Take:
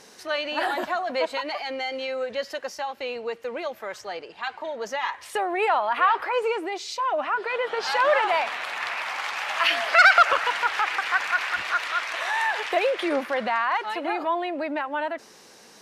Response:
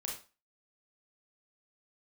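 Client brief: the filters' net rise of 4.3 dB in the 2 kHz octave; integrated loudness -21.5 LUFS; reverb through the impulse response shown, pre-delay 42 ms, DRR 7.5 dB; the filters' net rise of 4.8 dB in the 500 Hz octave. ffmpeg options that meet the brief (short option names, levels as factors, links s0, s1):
-filter_complex "[0:a]equalizer=f=500:t=o:g=5.5,equalizer=f=2000:t=o:g=5.5,asplit=2[s0][s1];[1:a]atrim=start_sample=2205,adelay=42[s2];[s1][s2]afir=irnorm=-1:irlink=0,volume=0.398[s3];[s0][s3]amix=inputs=2:normalize=0,volume=0.841"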